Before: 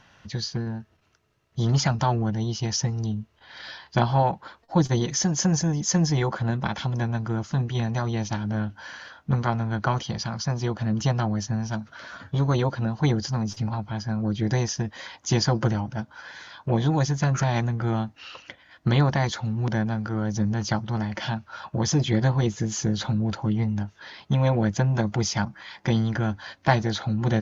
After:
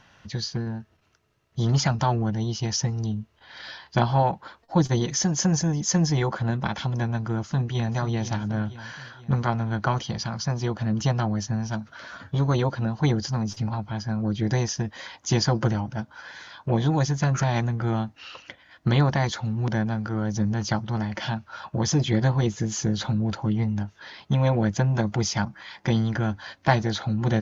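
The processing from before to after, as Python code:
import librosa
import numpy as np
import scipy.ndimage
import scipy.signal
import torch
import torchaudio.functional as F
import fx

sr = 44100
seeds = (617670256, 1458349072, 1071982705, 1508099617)

y = fx.echo_throw(x, sr, start_s=7.38, length_s=0.57, ms=480, feedback_pct=55, wet_db=-11.5)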